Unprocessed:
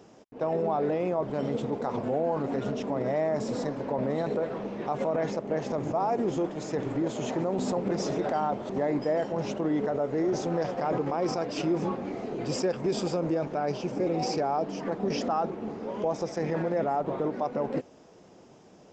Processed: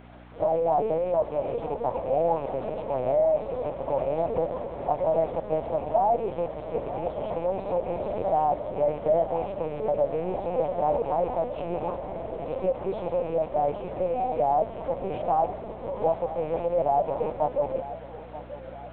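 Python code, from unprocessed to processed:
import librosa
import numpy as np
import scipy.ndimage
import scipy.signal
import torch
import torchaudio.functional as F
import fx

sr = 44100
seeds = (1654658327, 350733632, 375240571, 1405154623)

p1 = fx.rattle_buzz(x, sr, strikes_db=-32.0, level_db=-33.0)
p2 = fx.low_shelf(p1, sr, hz=190.0, db=-6.0)
p3 = fx.fixed_phaser(p2, sr, hz=640.0, stages=4)
p4 = fx.quant_dither(p3, sr, seeds[0], bits=8, dither='triangular')
p5 = scipy.signal.sosfilt(scipy.signal.butter(2, 1100.0, 'lowpass', fs=sr, output='sos'), p4)
p6 = fx.lpc_vocoder(p5, sr, seeds[1], excitation='pitch_kept', order=8)
p7 = fx.add_hum(p6, sr, base_hz=60, snr_db=16)
p8 = fx.tilt_eq(p7, sr, slope=2.5)
p9 = p8 + fx.echo_feedback(p8, sr, ms=933, feedback_pct=52, wet_db=-14.5, dry=0)
y = p9 * librosa.db_to_amplitude(8.5)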